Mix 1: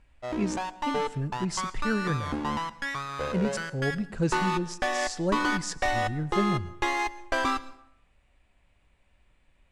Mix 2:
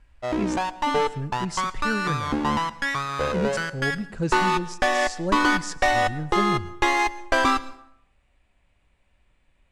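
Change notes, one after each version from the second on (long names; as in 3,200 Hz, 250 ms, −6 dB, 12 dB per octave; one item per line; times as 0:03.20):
background +6.5 dB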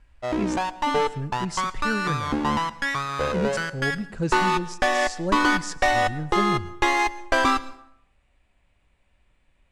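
nothing changed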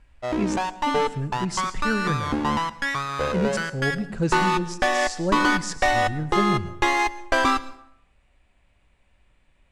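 speech: send +10.0 dB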